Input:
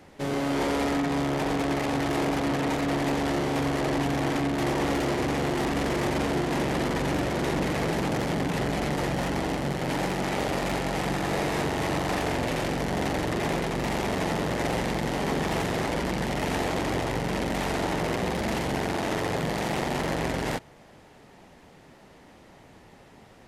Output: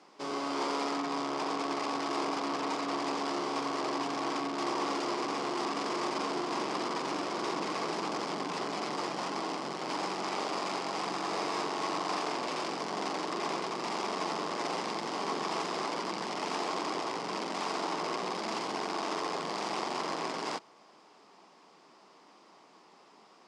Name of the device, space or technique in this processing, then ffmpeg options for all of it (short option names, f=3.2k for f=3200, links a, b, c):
television speaker: -af "highpass=f=230:w=0.5412,highpass=f=230:w=1.3066,equalizer=f=250:t=q:w=4:g=-6,equalizer=f=540:t=q:w=4:g=-5,equalizer=f=1.1k:t=q:w=4:g=10,equalizer=f=1.8k:t=q:w=4:g=-6,equalizer=f=5k:t=q:w=4:g=9,lowpass=f=8.5k:w=0.5412,lowpass=f=8.5k:w=1.3066,volume=-5.5dB"